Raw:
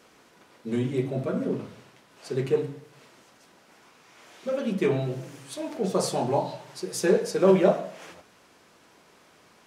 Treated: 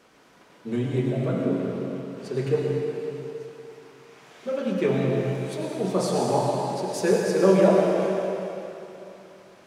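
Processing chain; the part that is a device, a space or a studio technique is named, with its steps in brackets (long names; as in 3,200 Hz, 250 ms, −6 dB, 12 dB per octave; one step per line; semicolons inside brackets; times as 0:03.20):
swimming-pool hall (convolution reverb RT60 3.2 s, pre-delay 84 ms, DRR −0.5 dB; high-shelf EQ 4,300 Hz −5 dB)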